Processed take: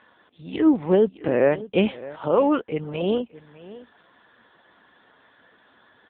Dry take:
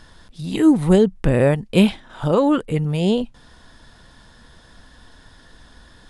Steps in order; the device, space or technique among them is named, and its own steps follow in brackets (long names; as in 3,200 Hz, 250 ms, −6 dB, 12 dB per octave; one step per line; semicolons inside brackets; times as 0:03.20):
satellite phone (band-pass filter 320–3,300 Hz; single-tap delay 611 ms −18 dB; AMR narrowband 6.7 kbit/s 8,000 Hz)